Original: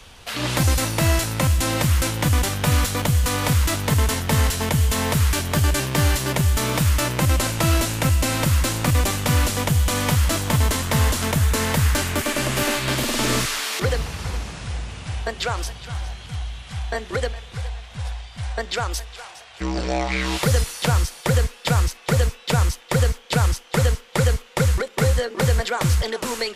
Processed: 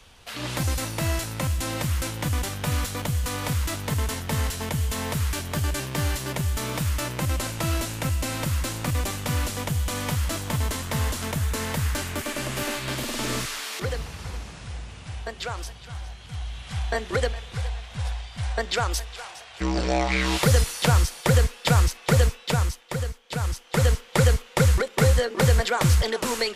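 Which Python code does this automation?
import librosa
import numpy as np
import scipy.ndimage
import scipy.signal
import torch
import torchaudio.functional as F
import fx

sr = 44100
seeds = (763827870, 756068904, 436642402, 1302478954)

y = fx.gain(x, sr, db=fx.line((16.18, -7.0), (16.71, 0.0), (22.27, 0.0), (23.18, -12.0), (23.94, 0.0)))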